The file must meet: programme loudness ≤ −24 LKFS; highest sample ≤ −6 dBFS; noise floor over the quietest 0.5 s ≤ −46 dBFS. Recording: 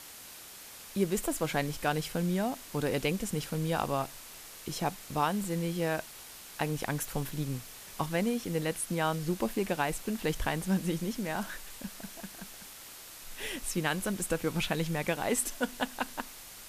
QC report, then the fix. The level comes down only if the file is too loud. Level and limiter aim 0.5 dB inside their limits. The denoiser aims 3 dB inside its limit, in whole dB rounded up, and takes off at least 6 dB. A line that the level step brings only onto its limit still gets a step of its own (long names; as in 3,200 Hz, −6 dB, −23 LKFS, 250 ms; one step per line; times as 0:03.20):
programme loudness −33.0 LKFS: in spec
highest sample −15.5 dBFS: in spec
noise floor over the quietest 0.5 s −48 dBFS: in spec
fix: no processing needed